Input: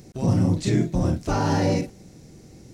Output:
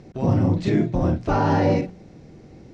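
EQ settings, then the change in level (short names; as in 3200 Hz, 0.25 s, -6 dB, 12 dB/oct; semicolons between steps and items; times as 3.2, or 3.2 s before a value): LPF 3200 Hz 12 dB/oct; bell 750 Hz +3 dB 2 oct; notches 60/120/180 Hz; +1.5 dB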